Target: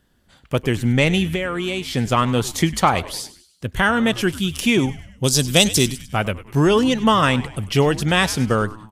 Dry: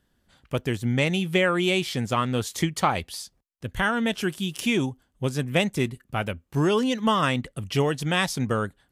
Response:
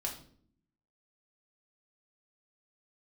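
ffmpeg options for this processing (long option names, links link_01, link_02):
-filter_complex "[0:a]asettb=1/sr,asplit=3[link_01][link_02][link_03];[link_01]atrim=end=1.284[link_04];[link_02]atrim=start=1.28:end=1.94,asetpts=PTS-STARTPTS,afade=type=in:duration=0.004:curve=qsin,afade=type=out:start_time=0.656:duration=0.004:curve=qsin,acompressor=threshold=-29dB:ratio=4[link_05];[link_03]atrim=start=1.936[link_06];[link_04][link_05]acrossfade=duration=0.004:curve1=hsin:curve2=qsin[link_07];[link_07][link_06]acrossfade=duration=0.004:curve1=qsin:curve2=hsin,asplit=3[link_08][link_09][link_10];[link_08]afade=type=out:start_time=5.23:duration=0.02[link_11];[link_09]highshelf=frequency=3100:width_type=q:width=1.5:gain=13.5,afade=type=in:start_time=5.23:duration=0.02,afade=type=out:start_time=6.03:duration=0.02[link_12];[link_10]afade=type=in:start_time=6.03:duration=0.02[link_13];[link_11][link_12][link_13]amix=inputs=3:normalize=0,asplit=2[link_14][link_15];[link_15]asplit=4[link_16][link_17][link_18][link_19];[link_16]adelay=100,afreqshift=-110,volume=-17dB[link_20];[link_17]adelay=200,afreqshift=-220,volume=-23dB[link_21];[link_18]adelay=300,afreqshift=-330,volume=-29dB[link_22];[link_19]adelay=400,afreqshift=-440,volume=-35.1dB[link_23];[link_20][link_21][link_22][link_23]amix=inputs=4:normalize=0[link_24];[link_14][link_24]amix=inputs=2:normalize=0,acontrast=25,volume=1.5dB"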